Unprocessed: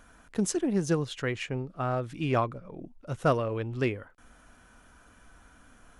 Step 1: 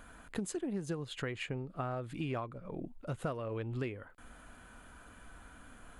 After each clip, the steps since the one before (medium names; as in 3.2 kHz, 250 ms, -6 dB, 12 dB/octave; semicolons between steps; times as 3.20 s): peaking EQ 5.7 kHz -13 dB 0.22 oct; compression 6:1, threshold -37 dBFS, peak gain reduction 17 dB; trim +2 dB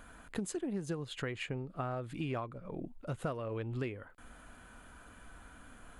no audible change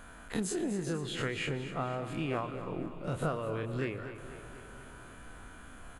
every event in the spectrogram widened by 60 ms; feedback delay 244 ms, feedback 56%, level -12 dB; reverberation RT60 4.6 s, pre-delay 75 ms, DRR 14.5 dB